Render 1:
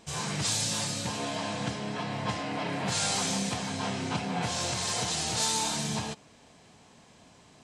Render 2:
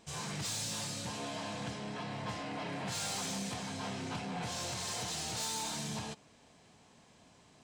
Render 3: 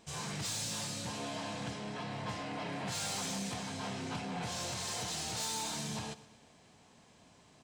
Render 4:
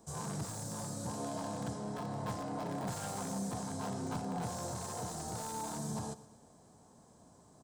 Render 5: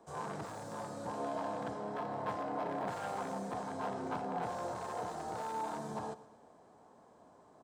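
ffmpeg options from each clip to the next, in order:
-af "asoftclip=type=tanh:threshold=0.0447,volume=0.531"
-af "aecho=1:1:118|236|354|472:0.119|0.0606|0.0309|0.0158"
-filter_complex "[0:a]firequalizer=gain_entry='entry(1500,0);entry(2700,-11);entry(8300,2)':delay=0.05:min_phase=1,acrossover=split=150|1400|3400[s0][s1][s2][s3];[s2]acrusher=bits=5:dc=4:mix=0:aa=0.000001[s4];[s3]alimiter=level_in=7.08:limit=0.0631:level=0:latency=1,volume=0.141[s5];[s0][s1][s4][s5]amix=inputs=4:normalize=0,volume=1.26"
-filter_complex "[0:a]acrossover=split=300 3100:gain=0.2 1 0.126[s0][s1][s2];[s0][s1][s2]amix=inputs=3:normalize=0,volume=1.58"

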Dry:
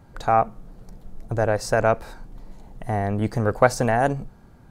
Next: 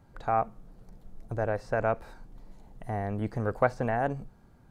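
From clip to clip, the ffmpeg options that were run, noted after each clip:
-filter_complex "[0:a]acrossover=split=3100[s0][s1];[s1]acompressor=threshold=0.00224:ratio=4:attack=1:release=60[s2];[s0][s2]amix=inputs=2:normalize=0,volume=0.398"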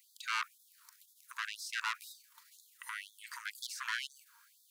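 -af "aemphasis=mode=production:type=50kf,aeval=exprs='(tanh(28.2*val(0)+0.5)-tanh(0.5))/28.2':c=same,afftfilt=real='re*gte(b*sr/1024,880*pow(3400/880,0.5+0.5*sin(2*PI*2*pts/sr)))':imag='im*gte(b*sr/1024,880*pow(3400/880,0.5+0.5*sin(2*PI*2*pts/sr)))':win_size=1024:overlap=0.75,volume=2.51"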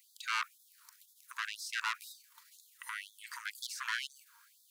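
-af "volume=1.12" -ar 44100 -c:a aac -b:a 160k

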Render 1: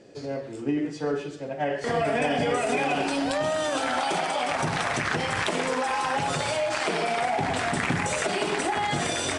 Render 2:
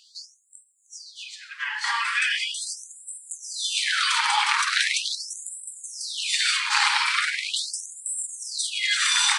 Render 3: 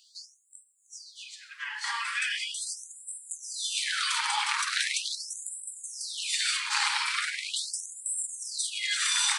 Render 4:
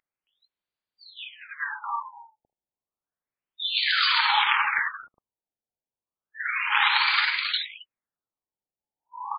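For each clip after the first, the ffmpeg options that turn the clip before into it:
-af "equalizer=f=4100:t=o:w=0.38:g=7,afftfilt=real='re*gte(b*sr/1024,780*pow(7500/780,0.5+0.5*sin(2*PI*0.4*pts/sr)))':imag='im*gte(b*sr/1024,780*pow(7500/780,0.5+0.5*sin(2*PI*0.4*pts/sr)))':win_size=1024:overlap=0.75,volume=2.51"
-af "highshelf=f=7200:g=9,volume=0.422"
-filter_complex "[0:a]asplit=2[s0][s1];[s1]adelay=270,highpass=300,lowpass=3400,asoftclip=type=hard:threshold=0.0891,volume=0.316[s2];[s0][s2]amix=inputs=2:normalize=0,afftfilt=real='re*lt(b*sr/1024,890*pow(5000/890,0.5+0.5*sin(2*PI*0.31*pts/sr)))':imag='im*lt(b*sr/1024,890*pow(5000/890,0.5+0.5*sin(2*PI*0.31*pts/sr)))':win_size=1024:overlap=0.75,volume=2.37"

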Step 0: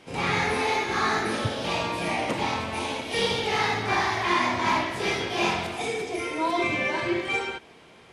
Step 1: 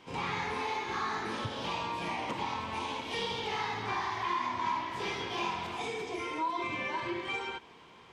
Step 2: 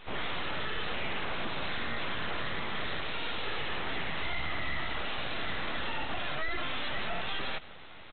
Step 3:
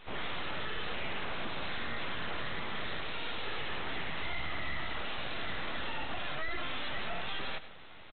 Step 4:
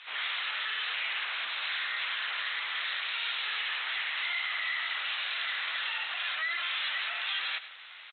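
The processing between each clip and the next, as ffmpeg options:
-af "equalizer=f=630:t=o:w=0.33:g=-5,equalizer=f=1000:t=o:w=0.33:g=10,equalizer=f=3150:t=o:w=0.33:g=3,equalizer=f=10000:t=o:w=0.33:g=-12,acompressor=threshold=0.0355:ratio=2.5,volume=0.562"
-af "alimiter=level_in=2.51:limit=0.0631:level=0:latency=1:release=12,volume=0.398,aresample=8000,aeval=exprs='abs(val(0))':c=same,aresample=44100,volume=2.66"
-af "aecho=1:1:102:0.158,volume=0.708"
-af "asuperpass=centerf=3400:order=4:qfactor=0.6,volume=2.66"

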